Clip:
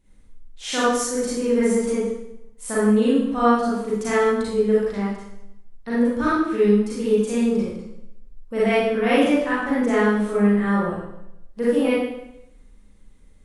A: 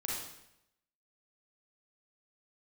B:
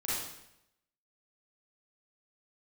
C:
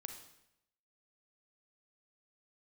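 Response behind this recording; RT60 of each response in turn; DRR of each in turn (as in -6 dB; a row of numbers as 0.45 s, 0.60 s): B; 0.80 s, 0.80 s, 0.80 s; -4.5 dB, -9.5 dB, 5.0 dB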